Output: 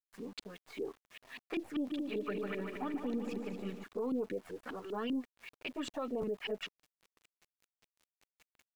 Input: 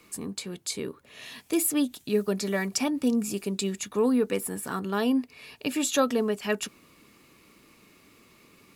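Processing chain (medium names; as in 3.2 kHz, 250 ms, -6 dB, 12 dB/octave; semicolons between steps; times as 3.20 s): partial rectifier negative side -3 dB; touch-sensitive flanger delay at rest 11.6 ms, full sweep at -22 dBFS; bass shelf 280 Hz -10.5 dB; LFO low-pass saw up 5.1 Hz 280–3100 Hz; treble shelf 4.6 kHz +8 dB; 1.75–3.84 s: multi-head delay 75 ms, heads second and third, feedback 60%, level -9.5 dB; peak limiter -25.5 dBFS, peak gain reduction 11 dB; small samples zeroed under -52.5 dBFS; crackling interface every 0.87 s, samples 512, repeat, from 0.99 s; trim -3 dB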